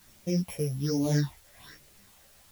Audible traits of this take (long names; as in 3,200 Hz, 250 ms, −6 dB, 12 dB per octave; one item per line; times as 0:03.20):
a buzz of ramps at a fixed pitch in blocks of 8 samples
phaser sweep stages 6, 1.2 Hz, lowest notch 260–1,400 Hz
a quantiser's noise floor 10 bits, dither triangular
a shimmering, thickened sound